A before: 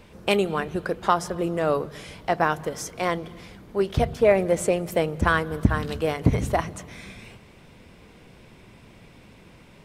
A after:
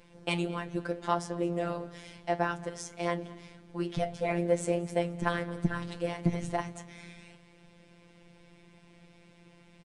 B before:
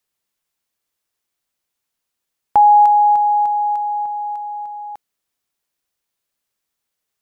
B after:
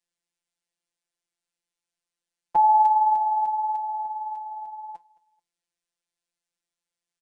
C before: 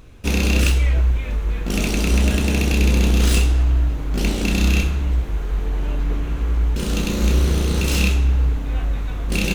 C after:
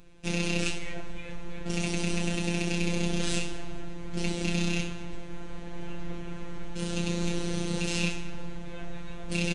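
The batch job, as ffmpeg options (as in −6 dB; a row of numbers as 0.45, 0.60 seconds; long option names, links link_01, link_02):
-filter_complex "[0:a]aresample=22050,aresample=44100,flanger=delay=9.8:depth=7.1:regen=-69:speed=1.6:shape=triangular,equalizer=frequency=1200:width=4.6:gain=-6,asplit=2[link_01][link_02];[link_02]aecho=0:1:217|434:0.0794|0.027[link_03];[link_01][link_03]amix=inputs=2:normalize=0,afftfilt=real='hypot(re,im)*cos(PI*b)':imag='0':win_size=1024:overlap=0.75"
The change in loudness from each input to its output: −8.5, −7.5, −12.0 LU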